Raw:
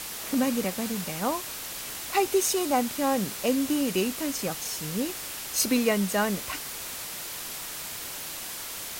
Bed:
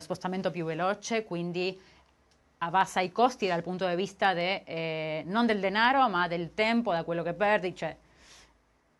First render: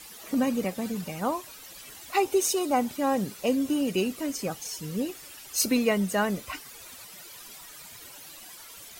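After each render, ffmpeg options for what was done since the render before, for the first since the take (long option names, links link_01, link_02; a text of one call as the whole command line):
ffmpeg -i in.wav -af "afftdn=noise_reduction=13:noise_floor=-37" out.wav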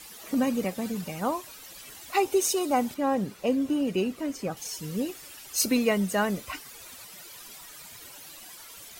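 ffmpeg -i in.wav -filter_complex "[0:a]asettb=1/sr,asplit=3[link_01][link_02][link_03];[link_01]atrim=end=2.944[link_04];[link_02]atrim=start=2.94:end=4.57,asetpts=PTS-STARTPTS,afade=type=in:duration=0.004:curve=qsin,afade=type=out:start_time=1.626:duration=0.004:curve=qsin,highshelf=frequency=3800:gain=-10[link_05];[link_03]atrim=start=4.566[link_06];[link_04][link_05]acrossfade=duration=0.004:curve1=hsin:curve2=qsin[link_07];[link_07][link_06]acrossfade=duration=0.004:curve1=qsin:curve2=hsin" out.wav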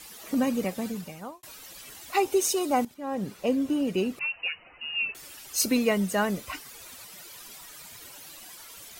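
ffmpeg -i in.wav -filter_complex "[0:a]asettb=1/sr,asplit=3[link_01][link_02][link_03];[link_01]atrim=end=4.194[link_04];[link_02]atrim=start=4.19:end=5.15,asetpts=PTS-STARTPTS,afade=type=in:duration=0.004:curve=qsin,afade=type=out:start_time=0.956:duration=0.004:curve=qsin,lowpass=frequency=2600:width_type=q:width=0.5098,lowpass=frequency=2600:width_type=q:width=0.6013,lowpass=frequency=2600:width_type=q:width=0.9,lowpass=frequency=2600:width_type=q:width=2.563,afreqshift=-3000[link_05];[link_03]atrim=start=5.146[link_06];[link_04][link_05]acrossfade=duration=0.004:curve1=hsin:curve2=qsin[link_07];[link_07][link_06]acrossfade=duration=0.004:curve1=qsin:curve2=hsin,asplit=3[link_08][link_09][link_10];[link_08]atrim=end=1.43,asetpts=PTS-STARTPTS,afade=type=out:start_time=0.82:duration=0.61[link_11];[link_09]atrim=start=1.43:end=2.85,asetpts=PTS-STARTPTS,afade=type=in:duration=0.004:curve=hsin,afade=type=out:start_time=1.416:duration=0.004:curve=hsin:silence=0.199526[link_12];[link_10]atrim=start=2.85,asetpts=PTS-STARTPTS,afade=type=in:duration=0.43:curve=qua:silence=0.199526[link_13];[link_11][link_12][link_13]concat=n=3:v=0:a=1" out.wav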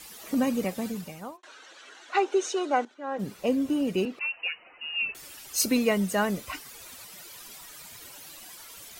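ffmpeg -i in.wav -filter_complex "[0:a]asplit=3[link_01][link_02][link_03];[link_01]afade=type=out:start_time=1.36:duration=0.02[link_04];[link_02]highpass=frequency=310:width=0.5412,highpass=frequency=310:width=1.3066,equalizer=frequency=1500:width_type=q:width=4:gain=9,equalizer=frequency=2400:width_type=q:width=4:gain=-3,equalizer=frequency=5000:width_type=q:width=4:gain=-9,lowpass=frequency=5900:width=0.5412,lowpass=frequency=5900:width=1.3066,afade=type=in:start_time=1.36:duration=0.02,afade=type=out:start_time=3.18:duration=0.02[link_05];[link_03]afade=type=in:start_time=3.18:duration=0.02[link_06];[link_04][link_05][link_06]amix=inputs=3:normalize=0,asettb=1/sr,asplit=3[link_07][link_08][link_09];[link_07]atrim=end=4.054[link_10];[link_08]atrim=start=4.05:end=5.01,asetpts=PTS-STARTPTS,afade=type=in:duration=0.004:curve=qsin,afade=type=out:start_time=0.956:duration=0.004:curve=qsin,acrossover=split=230 5200:gain=0.158 1 0.112[link_11][link_12][link_13];[link_11][link_12][link_13]amix=inputs=3:normalize=0[link_14];[link_09]atrim=start=5.006[link_15];[link_10][link_14]acrossfade=duration=0.004:curve1=hsin:curve2=qsin[link_16];[link_16][link_15]acrossfade=duration=0.004:curve1=qsin:curve2=hsin" out.wav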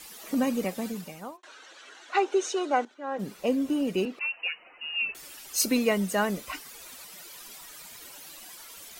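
ffmpeg -i in.wav -af "equalizer=frequency=96:width_type=o:width=0.76:gain=-12.5" out.wav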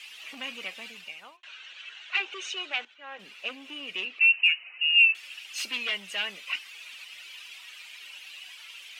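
ffmpeg -i in.wav -af "aeval=exprs='0.282*sin(PI/2*2.82*val(0)/0.282)':channel_layout=same,bandpass=frequency=2700:width_type=q:width=4.4:csg=0" out.wav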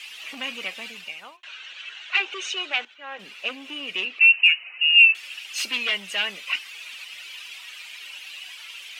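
ffmpeg -i in.wav -af "volume=5.5dB" out.wav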